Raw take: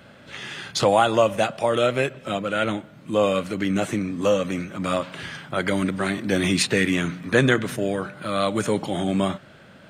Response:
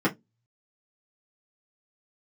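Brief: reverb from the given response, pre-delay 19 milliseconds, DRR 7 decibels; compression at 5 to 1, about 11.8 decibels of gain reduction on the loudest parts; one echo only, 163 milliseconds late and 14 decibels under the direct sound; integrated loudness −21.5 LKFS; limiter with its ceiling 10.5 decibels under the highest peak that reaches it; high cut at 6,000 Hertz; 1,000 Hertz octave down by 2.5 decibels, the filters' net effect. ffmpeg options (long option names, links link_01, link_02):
-filter_complex "[0:a]lowpass=6000,equalizer=frequency=1000:width_type=o:gain=-3.5,acompressor=threshold=-28dB:ratio=5,alimiter=level_in=3dB:limit=-24dB:level=0:latency=1,volume=-3dB,aecho=1:1:163:0.2,asplit=2[link_01][link_02];[1:a]atrim=start_sample=2205,adelay=19[link_03];[link_02][link_03]afir=irnorm=-1:irlink=0,volume=-20dB[link_04];[link_01][link_04]amix=inputs=2:normalize=0,volume=11dB"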